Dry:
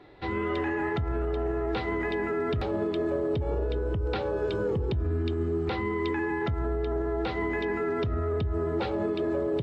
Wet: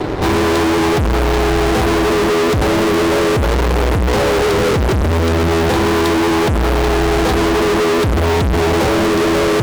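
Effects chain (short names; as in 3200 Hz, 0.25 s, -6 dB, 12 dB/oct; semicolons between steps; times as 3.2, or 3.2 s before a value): elliptic band-stop 1100–3600 Hz; tilt shelf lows +4.5 dB, about 1100 Hz; fuzz box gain 50 dB, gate -54 dBFS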